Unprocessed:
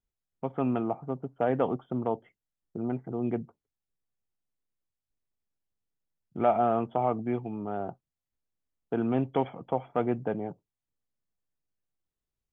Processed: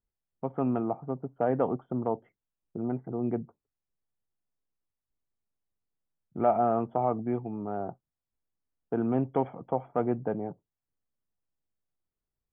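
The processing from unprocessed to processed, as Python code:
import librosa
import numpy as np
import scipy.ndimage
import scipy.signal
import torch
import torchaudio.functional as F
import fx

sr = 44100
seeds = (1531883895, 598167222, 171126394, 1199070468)

y = scipy.signal.sosfilt(scipy.signal.butter(2, 1500.0, 'lowpass', fs=sr, output='sos'), x)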